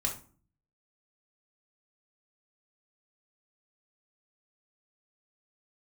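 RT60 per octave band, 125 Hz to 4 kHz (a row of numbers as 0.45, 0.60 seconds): 0.75, 0.65, 0.45, 0.40, 0.30, 0.25 seconds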